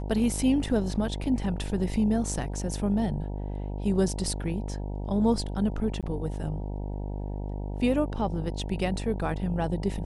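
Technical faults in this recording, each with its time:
mains buzz 50 Hz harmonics 19 −33 dBFS
0:06.01–0:06.03: drop-out 17 ms

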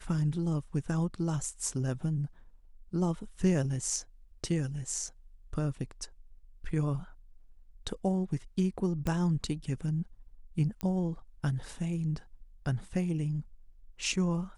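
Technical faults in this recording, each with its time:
0:09.07: click −19 dBFS
0:10.81: click −21 dBFS

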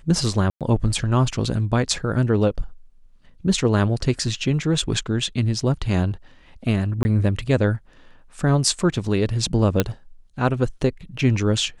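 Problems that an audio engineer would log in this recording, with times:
0:00.50–0:00.61: drop-out 107 ms
0:07.03–0:07.05: drop-out 20 ms
0:09.80: click −3 dBFS

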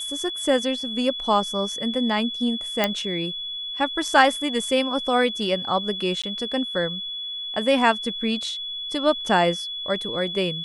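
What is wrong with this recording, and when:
whistle 3,400 Hz −29 dBFS
0:02.84: click −5 dBFS
0:06.22–0:06.24: drop-out 16 ms

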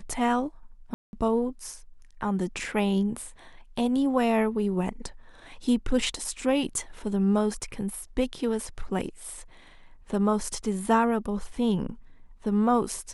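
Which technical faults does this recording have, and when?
0:00.94–0:01.13: drop-out 191 ms

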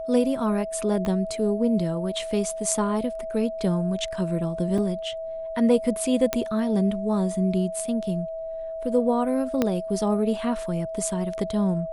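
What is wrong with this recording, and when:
whistle 650 Hz −30 dBFS
0:01.05: click −17 dBFS
0:04.78: drop-out 4.2 ms
0:06.33: click −7 dBFS
0:09.62: click −9 dBFS

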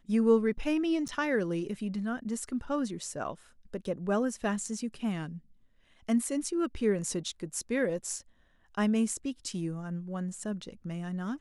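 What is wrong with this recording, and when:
0:01.08–0:01.09: drop-out 8.4 ms

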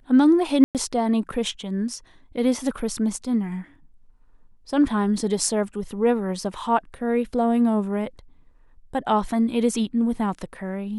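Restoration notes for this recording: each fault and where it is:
0:00.64–0:00.75: drop-out 108 ms

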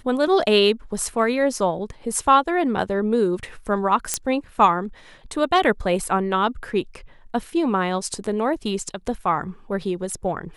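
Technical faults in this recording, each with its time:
0:04.14: click −5 dBFS

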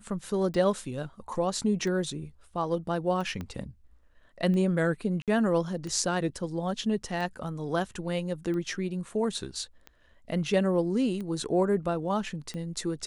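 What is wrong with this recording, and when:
scratch tick 45 rpm −26 dBFS
0:03.41: click −23 dBFS
0:05.22–0:05.28: drop-out 57 ms

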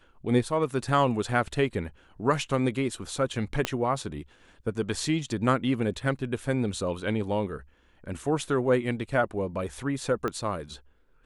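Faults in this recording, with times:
0:03.65: click −10 dBFS
0:10.28: click −17 dBFS

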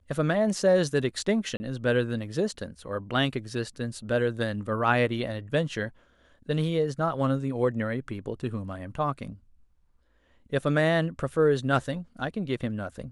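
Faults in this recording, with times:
0:01.57–0:01.60: drop-out 30 ms

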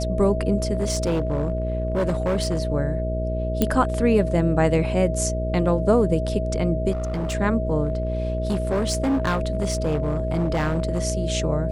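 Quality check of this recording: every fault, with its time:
mains buzz 60 Hz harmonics 10 −26 dBFS
whistle 640 Hz −28 dBFS
0:00.75–0:02.60: clipping −18 dBFS
0:03.62: click −6 dBFS
0:06.91–0:07.35: clipping −22.5 dBFS
0:07.85–0:11.00: clipping −18 dBFS

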